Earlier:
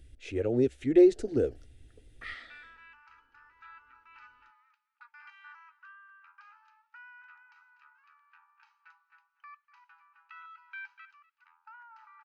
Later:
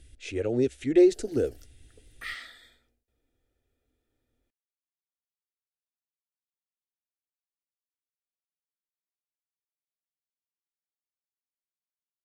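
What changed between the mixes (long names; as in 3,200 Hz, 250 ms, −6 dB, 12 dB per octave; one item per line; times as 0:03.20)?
speech: add high-frequency loss of the air 76 metres
second sound: muted
master: remove head-to-tape spacing loss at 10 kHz 22 dB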